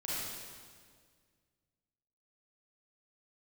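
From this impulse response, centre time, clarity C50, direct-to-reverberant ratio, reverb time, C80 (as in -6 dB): 0.138 s, -5.5 dB, -8.5 dB, 1.8 s, -2.0 dB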